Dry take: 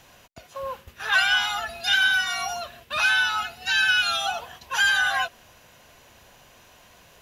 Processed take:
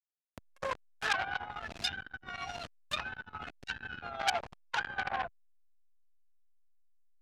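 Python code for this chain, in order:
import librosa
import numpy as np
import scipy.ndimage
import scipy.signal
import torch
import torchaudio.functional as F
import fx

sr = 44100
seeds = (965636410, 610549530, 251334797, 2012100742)

y = fx.delta_hold(x, sr, step_db=-32.5)
y = fx.env_lowpass_down(y, sr, base_hz=620.0, full_db=-20.0)
y = fx.peak_eq(y, sr, hz=810.0, db=-10.5, octaves=2.3, at=(1.51, 4.01))
y = fx.level_steps(y, sr, step_db=9)
y = y * (1.0 - 0.5 / 2.0 + 0.5 / 2.0 * np.cos(2.0 * np.pi * 14.0 * (np.arange(len(y)) / sr)))
y = fx.transformer_sat(y, sr, knee_hz=3900.0)
y = y * librosa.db_to_amplitude(8.5)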